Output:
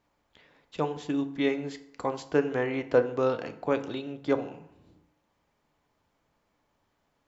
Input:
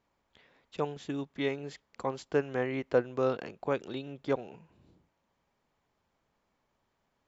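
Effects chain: FDN reverb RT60 0.72 s, low-frequency decay 1.05×, high-frequency decay 0.65×, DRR 8.5 dB; trim +3 dB

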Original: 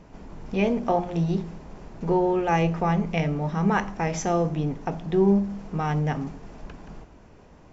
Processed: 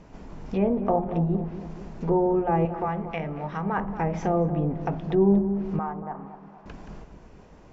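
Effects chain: low-pass that closes with the level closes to 1 kHz, closed at -21 dBFS; 2.65–3.78 s: tilt shelf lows -8.5 dB, about 930 Hz; 5.79–6.66 s: band-pass filter 1 kHz, Q 1.6; on a send: filtered feedback delay 231 ms, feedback 51%, low-pass 960 Hz, level -10 dB

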